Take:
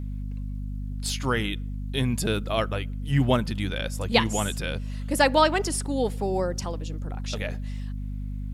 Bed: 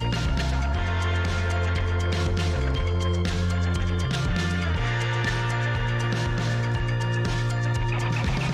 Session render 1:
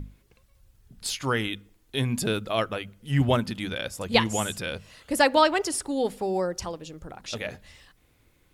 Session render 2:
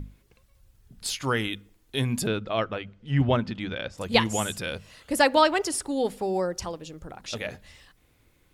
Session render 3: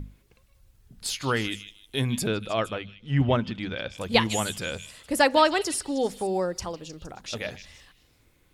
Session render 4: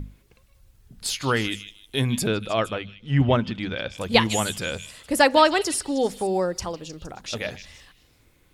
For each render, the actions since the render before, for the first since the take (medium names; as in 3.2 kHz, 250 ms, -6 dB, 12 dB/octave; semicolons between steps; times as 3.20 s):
hum notches 50/100/150/200/250 Hz
2.27–3.98 s: distance through air 150 m
repeats whose band climbs or falls 155 ms, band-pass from 3.2 kHz, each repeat 0.7 oct, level -9.5 dB
trim +3 dB